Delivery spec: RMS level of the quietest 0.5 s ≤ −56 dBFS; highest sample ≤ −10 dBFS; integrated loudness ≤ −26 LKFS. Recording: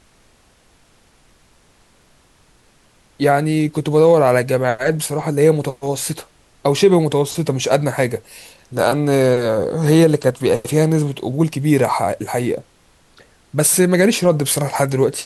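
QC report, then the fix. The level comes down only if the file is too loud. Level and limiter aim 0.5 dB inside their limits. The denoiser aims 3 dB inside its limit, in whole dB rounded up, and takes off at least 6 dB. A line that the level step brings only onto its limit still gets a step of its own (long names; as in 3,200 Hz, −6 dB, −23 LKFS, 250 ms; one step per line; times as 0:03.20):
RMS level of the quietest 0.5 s −54 dBFS: out of spec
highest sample −2.5 dBFS: out of spec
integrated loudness −16.5 LKFS: out of spec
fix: level −10 dB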